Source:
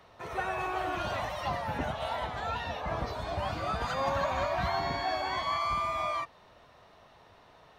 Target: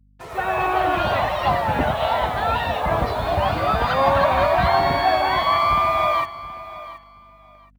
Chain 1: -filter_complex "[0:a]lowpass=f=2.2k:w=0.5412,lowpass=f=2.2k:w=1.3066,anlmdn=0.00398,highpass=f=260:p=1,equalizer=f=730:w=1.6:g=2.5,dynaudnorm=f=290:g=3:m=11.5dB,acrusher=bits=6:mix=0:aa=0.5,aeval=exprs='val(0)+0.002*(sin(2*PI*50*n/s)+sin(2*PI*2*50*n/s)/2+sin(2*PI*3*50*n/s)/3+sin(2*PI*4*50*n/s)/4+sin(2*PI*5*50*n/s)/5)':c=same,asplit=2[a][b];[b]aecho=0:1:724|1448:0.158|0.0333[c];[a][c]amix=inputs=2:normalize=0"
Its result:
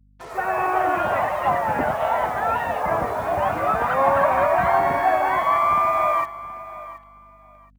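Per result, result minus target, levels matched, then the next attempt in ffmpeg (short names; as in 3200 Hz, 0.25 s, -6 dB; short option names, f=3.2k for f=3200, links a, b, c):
4000 Hz band -12.5 dB; 250 Hz band -2.5 dB
-filter_complex "[0:a]lowpass=f=4.4k:w=0.5412,lowpass=f=4.4k:w=1.3066,anlmdn=0.00398,highpass=f=260:p=1,equalizer=f=730:w=1.6:g=2.5,dynaudnorm=f=290:g=3:m=11.5dB,acrusher=bits=6:mix=0:aa=0.5,aeval=exprs='val(0)+0.002*(sin(2*PI*50*n/s)+sin(2*PI*2*50*n/s)/2+sin(2*PI*3*50*n/s)/3+sin(2*PI*4*50*n/s)/4+sin(2*PI*5*50*n/s)/5)':c=same,asplit=2[a][b];[b]aecho=0:1:724|1448:0.158|0.0333[c];[a][c]amix=inputs=2:normalize=0"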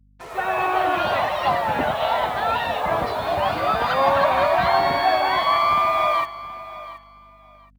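250 Hz band -2.5 dB
-filter_complex "[0:a]lowpass=f=4.4k:w=0.5412,lowpass=f=4.4k:w=1.3066,anlmdn=0.00398,equalizer=f=730:w=1.6:g=2.5,dynaudnorm=f=290:g=3:m=11.5dB,acrusher=bits=6:mix=0:aa=0.5,aeval=exprs='val(0)+0.002*(sin(2*PI*50*n/s)+sin(2*PI*2*50*n/s)/2+sin(2*PI*3*50*n/s)/3+sin(2*PI*4*50*n/s)/4+sin(2*PI*5*50*n/s)/5)':c=same,asplit=2[a][b];[b]aecho=0:1:724|1448:0.158|0.0333[c];[a][c]amix=inputs=2:normalize=0"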